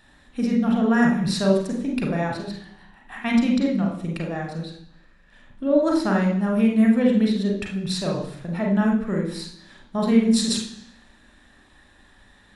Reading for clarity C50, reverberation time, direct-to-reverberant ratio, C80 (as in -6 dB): 5.0 dB, 0.70 s, -1.0 dB, 8.5 dB